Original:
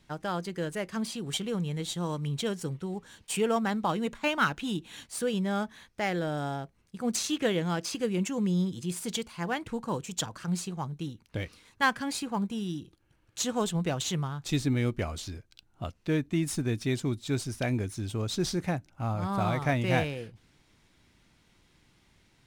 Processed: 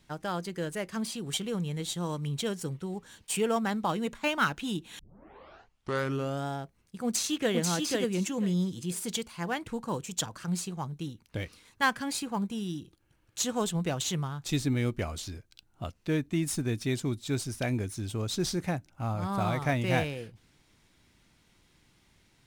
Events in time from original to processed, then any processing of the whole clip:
0:04.99: tape start 1.46 s
0:07.05–0:07.55: delay throw 490 ms, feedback 20%, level −2.5 dB
whole clip: high-shelf EQ 7,200 Hz +5 dB; level −1 dB

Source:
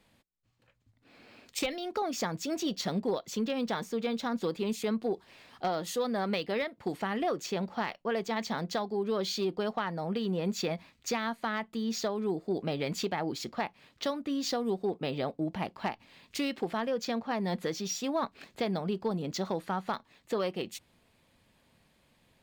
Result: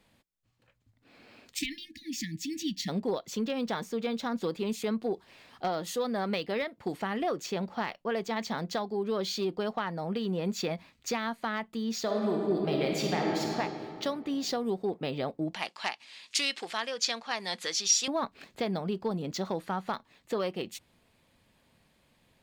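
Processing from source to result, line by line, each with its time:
0:01.57–0:02.88: time-frequency box erased 340–1,700 Hz
0:12.02–0:13.55: thrown reverb, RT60 2.7 s, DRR −1 dB
0:15.54–0:18.08: meter weighting curve ITU-R 468

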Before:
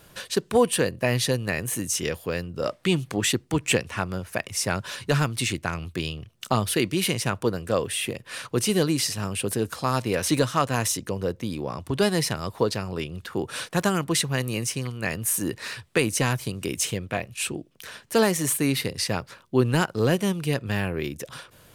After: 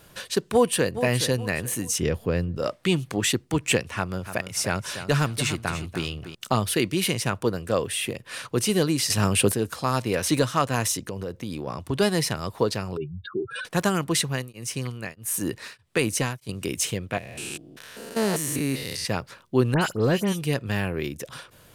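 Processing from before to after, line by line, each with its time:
0:00.52–0:01.00: delay throw 420 ms, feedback 35%, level −11 dB
0:01.98–0:02.57: spectral tilt −2.5 dB per octave
0:03.96–0:06.35: repeating echo 292 ms, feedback 24%, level −11 dB
0:09.10–0:09.52: clip gain +7.5 dB
0:11.08–0:11.67: downward compressor, threshold −27 dBFS
0:12.97–0:13.65: expanding power law on the bin magnitudes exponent 3.3
0:14.22–0:16.49: tremolo along a rectified sine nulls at 1.6 Hz
0:17.18–0:19.05: spectrum averaged block by block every 200 ms
0:19.74–0:20.41: all-pass dispersion highs, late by 76 ms, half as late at 2,900 Hz

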